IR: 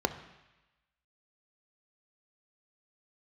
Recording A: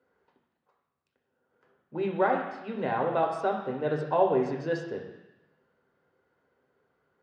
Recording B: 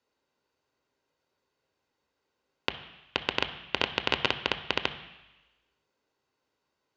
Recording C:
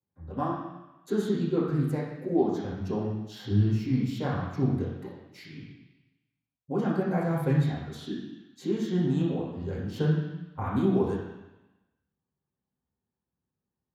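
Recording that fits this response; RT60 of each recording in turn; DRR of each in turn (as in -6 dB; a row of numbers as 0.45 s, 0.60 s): B; 1.0 s, 1.0 s, 1.0 s; 0.0 dB, 9.0 dB, -7.5 dB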